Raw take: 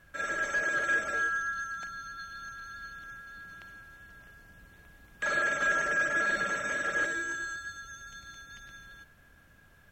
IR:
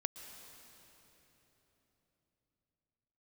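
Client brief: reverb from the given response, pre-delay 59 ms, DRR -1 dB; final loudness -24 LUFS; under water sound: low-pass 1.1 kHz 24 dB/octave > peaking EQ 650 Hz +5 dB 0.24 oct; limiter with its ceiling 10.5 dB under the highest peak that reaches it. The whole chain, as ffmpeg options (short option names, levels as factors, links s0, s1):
-filter_complex "[0:a]alimiter=level_in=1.68:limit=0.0631:level=0:latency=1,volume=0.596,asplit=2[s0][s1];[1:a]atrim=start_sample=2205,adelay=59[s2];[s1][s2]afir=irnorm=-1:irlink=0,volume=1.19[s3];[s0][s3]amix=inputs=2:normalize=0,lowpass=f=1100:w=0.5412,lowpass=f=1100:w=1.3066,equalizer=f=650:t=o:w=0.24:g=5,volume=7.5"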